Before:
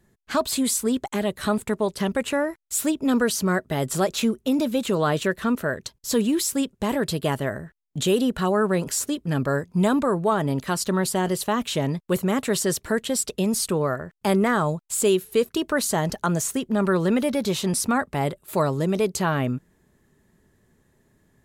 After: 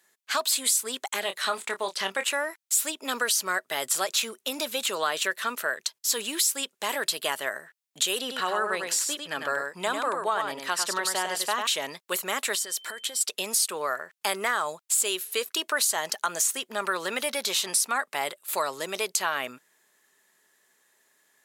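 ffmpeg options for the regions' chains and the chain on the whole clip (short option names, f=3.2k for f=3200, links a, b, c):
-filter_complex "[0:a]asettb=1/sr,asplit=3[a][b][c];[a]atrim=end=1.204[d];[b]atrim=start=1.2:end=2.24,asetpts=PTS-STARTPTS,afade=t=in:d=0.004:c=qsin,afade=t=out:st=1.036:d=0.004:c=qsin,acrossover=split=7000[e][f];[f]acompressor=threshold=-53dB:ratio=4:attack=1:release=60[g];[e][g]amix=inputs=2:normalize=0,asplit=2[h][i];[i]adelay=26,volume=-8.5dB[j];[h][j]amix=inputs=2:normalize=0,atrim=end_sample=45864[k];[c]atrim=start=2.236[l];[d][k]acrossfade=d=0.004:c1=hsin:c2=qsin[m];[m][l]acrossfade=d=0.004:c1=qsin:c2=hsin,asettb=1/sr,asplit=3[n][o][p];[n]atrim=end=8.194[q];[o]atrim=start=8.19:end=11.67,asetpts=PTS-STARTPTS,afade=t=in:d=0.004:c=qsin,afade=t=out:st=3.476:d=0.004:c=qsin,highshelf=f=6.7k:g=-10.5,aecho=1:1:99:0.531,atrim=end_sample=153468[r];[p]atrim=start=11.666[s];[q][r]acrossfade=d=0.004:c1=hsin:c2=qsin[t];[t][s]acrossfade=d=0.004:c1=qsin:c2=hsin,asettb=1/sr,asplit=3[u][v][w];[u]atrim=end=12.554[x];[v]atrim=start=12.55:end=13.21,asetpts=PTS-STARTPTS,afade=t=in:d=0.004:c=qsin,afade=t=out:st=0.656:d=0.004:c=qsin,acompressor=threshold=-30dB:ratio=10:attack=3.2:release=140:knee=1:detection=peak,bandreject=f=2.8k:w=13,aeval=exprs='val(0)+0.00224*sin(2*PI*3100*n/s)':c=same[y];[w]atrim=start=13.206[z];[x][y]acrossfade=d=0.004:c1=hsin:c2=qsin[aa];[aa][z]acrossfade=d=0.004:c1=qsin:c2=hsin,highpass=510,tiltshelf=f=970:g=-7.5,acompressor=threshold=-23dB:ratio=2.5"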